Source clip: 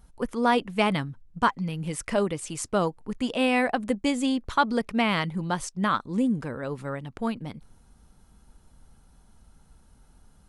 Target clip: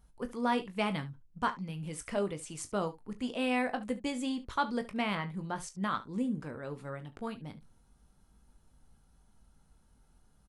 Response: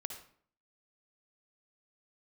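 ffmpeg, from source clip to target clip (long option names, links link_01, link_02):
-filter_complex "[0:a]asettb=1/sr,asplit=3[link_01][link_02][link_03];[link_01]atrim=end=5.154[link_04];[link_02]atrim=start=5.15:end=5.56,asetpts=PTS-STARTPTS,afade=type=in:duration=0.004:curve=qsin,afade=type=out:start_time=0.406:duration=0.004:curve=qsin,acrossover=split=2500[link_05][link_06];[link_06]acompressor=threshold=-46dB:ratio=4:attack=1:release=60[link_07];[link_05][link_07]amix=inputs=2:normalize=0[link_08];[link_03]atrim=start=5.556[link_09];[link_04][link_08]acrossfade=duration=0.004:curve1=hsin:curve2=qsin[link_10];[link_10][link_09]acrossfade=duration=0.004:curve1=qsin:curve2=hsin,aecho=1:1:20|37|71:0.335|0.15|0.141,volume=-9dB"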